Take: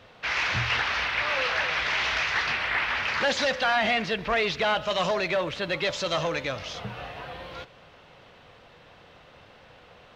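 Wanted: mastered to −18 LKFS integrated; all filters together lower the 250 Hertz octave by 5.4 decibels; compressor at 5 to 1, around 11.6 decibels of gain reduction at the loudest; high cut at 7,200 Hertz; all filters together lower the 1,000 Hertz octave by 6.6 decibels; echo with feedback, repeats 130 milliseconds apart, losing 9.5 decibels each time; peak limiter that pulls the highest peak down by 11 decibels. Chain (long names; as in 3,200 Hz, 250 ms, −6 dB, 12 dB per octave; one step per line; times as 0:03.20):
low-pass filter 7,200 Hz
parametric band 250 Hz −7.5 dB
parametric band 1,000 Hz −9 dB
downward compressor 5 to 1, threshold −38 dBFS
brickwall limiter −38 dBFS
repeating echo 130 ms, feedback 33%, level −9.5 dB
level +27 dB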